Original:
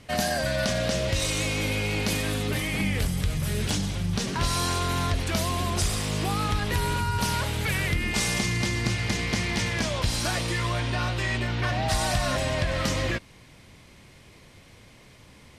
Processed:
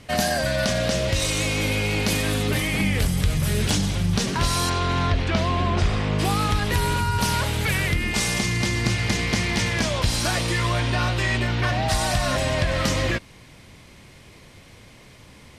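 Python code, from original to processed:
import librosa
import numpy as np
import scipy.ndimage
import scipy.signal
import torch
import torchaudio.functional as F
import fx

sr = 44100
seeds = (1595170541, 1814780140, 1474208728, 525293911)

y = fx.lowpass(x, sr, hz=fx.line((4.69, 4800.0), (6.18, 2300.0)), slope=12, at=(4.69, 6.18), fade=0.02)
y = fx.rider(y, sr, range_db=10, speed_s=0.5)
y = y * 10.0 ** (4.0 / 20.0)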